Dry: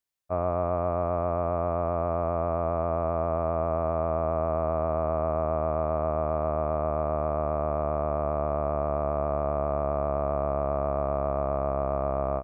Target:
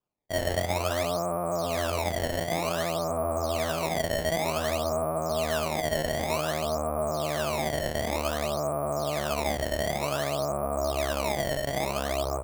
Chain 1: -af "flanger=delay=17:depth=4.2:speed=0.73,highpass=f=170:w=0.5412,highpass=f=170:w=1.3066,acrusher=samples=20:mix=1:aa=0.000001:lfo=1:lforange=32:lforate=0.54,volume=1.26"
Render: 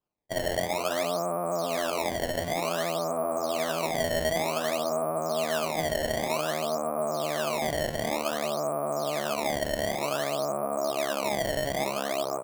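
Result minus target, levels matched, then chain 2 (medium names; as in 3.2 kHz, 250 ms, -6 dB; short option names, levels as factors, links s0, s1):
125 Hz band -5.5 dB
-af "flanger=delay=17:depth=4.2:speed=0.73,highpass=f=59:w=0.5412,highpass=f=59:w=1.3066,acrusher=samples=20:mix=1:aa=0.000001:lfo=1:lforange=32:lforate=0.54,volume=1.26"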